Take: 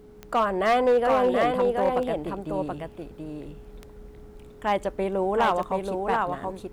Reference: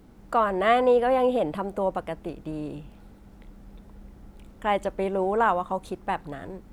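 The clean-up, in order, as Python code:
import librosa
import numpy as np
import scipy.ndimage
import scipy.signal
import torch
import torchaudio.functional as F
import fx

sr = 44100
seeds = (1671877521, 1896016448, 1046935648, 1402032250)

y = fx.fix_declip(x, sr, threshold_db=-15.5)
y = fx.fix_declick_ar(y, sr, threshold=10.0)
y = fx.notch(y, sr, hz=420.0, q=30.0)
y = fx.fix_echo_inverse(y, sr, delay_ms=728, level_db=-4.0)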